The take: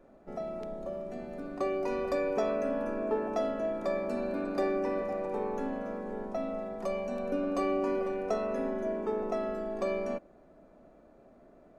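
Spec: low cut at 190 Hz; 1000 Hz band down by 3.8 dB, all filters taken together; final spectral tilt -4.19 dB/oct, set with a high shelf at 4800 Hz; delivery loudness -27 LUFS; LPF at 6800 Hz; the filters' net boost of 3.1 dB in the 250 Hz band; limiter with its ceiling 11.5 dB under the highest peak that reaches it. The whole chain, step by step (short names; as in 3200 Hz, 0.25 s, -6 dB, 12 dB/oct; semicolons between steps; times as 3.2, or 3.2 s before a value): HPF 190 Hz; LPF 6800 Hz; bell 250 Hz +5.5 dB; bell 1000 Hz -5.5 dB; high shelf 4800 Hz -6.5 dB; gain +10.5 dB; limiter -18.5 dBFS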